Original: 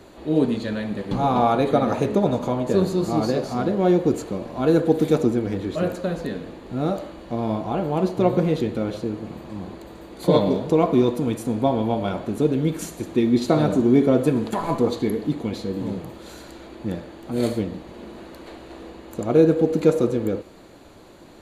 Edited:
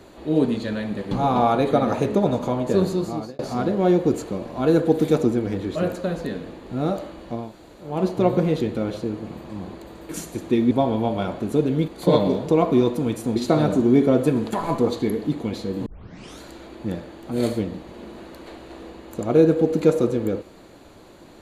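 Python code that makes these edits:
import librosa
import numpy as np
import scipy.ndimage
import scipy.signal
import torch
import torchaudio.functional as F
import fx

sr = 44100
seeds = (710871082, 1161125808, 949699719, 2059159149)

y = fx.edit(x, sr, fx.fade_out_span(start_s=2.91, length_s=0.48),
    fx.room_tone_fill(start_s=7.41, length_s=0.5, crossfade_s=0.24),
    fx.swap(start_s=10.09, length_s=1.48, other_s=12.74, other_length_s=0.62),
    fx.tape_start(start_s=15.86, length_s=0.55), tone=tone)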